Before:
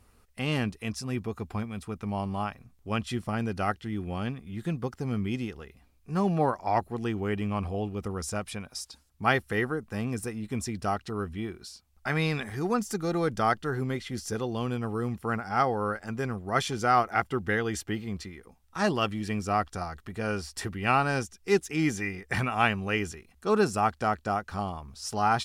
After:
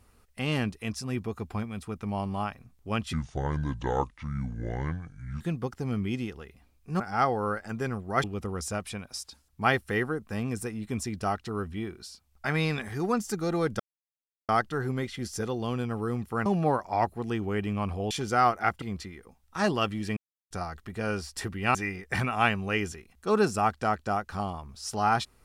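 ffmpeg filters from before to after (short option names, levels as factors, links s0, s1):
-filter_complex "[0:a]asplit=12[s0][s1][s2][s3][s4][s5][s6][s7][s8][s9][s10][s11];[s0]atrim=end=3.134[s12];[s1]atrim=start=3.13:end=4.61,asetpts=PTS-STARTPTS,asetrate=28665,aresample=44100,atrim=end_sample=100412,asetpts=PTS-STARTPTS[s13];[s2]atrim=start=4.606:end=6.202[s14];[s3]atrim=start=15.378:end=16.622[s15];[s4]atrim=start=7.848:end=13.41,asetpts=PTS-STARTPTS,afade=t=out:st=5.558:d=0.004:c=hsin,apad=pad_dur=0.69[s16];[s5]atrim=start=13.41:end=15.382,asetpts=PTS-STARTPTS,afade=t=in:d=0.004:c=hsin[s17];[s6]atrim=start=6.198:end=7.852[s18];[s7]atrim=start=16.618:end=17.332[s19];[s8]atrim=start=18.018:end=19.37,asetpts=PTS-STARTPTS,afade=t=out:st=1.348:d=0.004:c=hsin[s20];[s9]atrim=start=19.37:end=19.71,asetpts=PTS-STARTPTS,volume=0[s21];[s10]atrim=start=19.71:end=20.952,asetpts=PTS-STARTPTS,afade=t=in:d=0.004:c=hsin[s22];[s11]atrim=start=21.938[s23];[s12][s13]acrossfade=d=0.004:c1=hsin:c2=hsin[s24];[s24][s14]acrossfade=d=0.004:c1=hsin:c2=hsin[s25];[s25][s15]acrossfade=d=0.004:c1=hsin:c2=hsin[s26];[s16][s17]concat=n=2:v=0:a=1[s27];[s26][s27]acrossfade=d=0.004:c1=hsin:c2=hsin[s28];[s28][s18]acrossfade=d=0.004:c1=hsin:c2=hsin[s29];[s29][s19]acrossfade=d=0.004:c1=hsin:c2=hsin[s30];[s20][s21][s22]concat=n=3:v=0:a=1[s31];[s30][s31]acrossfade=d=0.004:c1=hsin:c2=hsin[s32];[s32][s23]acrossfade=d=0.004:c1=hsin:c2=hsin"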